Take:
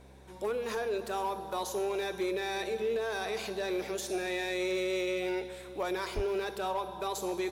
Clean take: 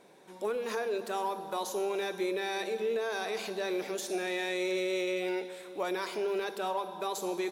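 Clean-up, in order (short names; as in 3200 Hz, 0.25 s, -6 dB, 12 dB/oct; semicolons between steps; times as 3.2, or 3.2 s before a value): clip repair -26 dBFS; de-hum 66 Hz, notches 4; de-plosive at 6.15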